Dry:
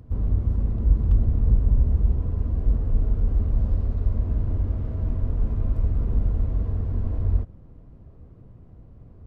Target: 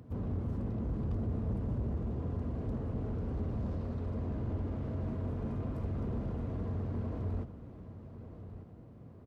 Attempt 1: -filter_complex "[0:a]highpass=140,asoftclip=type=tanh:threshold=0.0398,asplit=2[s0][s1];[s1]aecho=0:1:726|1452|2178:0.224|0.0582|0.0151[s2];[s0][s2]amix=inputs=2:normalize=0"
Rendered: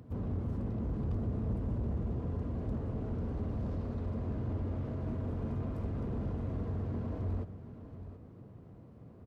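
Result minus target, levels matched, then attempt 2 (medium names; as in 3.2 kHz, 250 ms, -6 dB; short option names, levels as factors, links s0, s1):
echo 469 ms early
-filter_complex "[0:a]highpass=140,asoftclip=type=tanh:threshold=0.0398,asplit=2[s0][s1];[s1]aecho=0:1:1195|2390|3585:0.224|0.0582|0.0151[s2];[s0][s2]amix=inputs=2:normalize=0"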